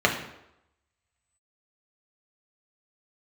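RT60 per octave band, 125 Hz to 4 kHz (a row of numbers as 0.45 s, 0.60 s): 0.70 s, 0.75 s, 0.85 s, 0.85 s, 0.75 s, 0.65 s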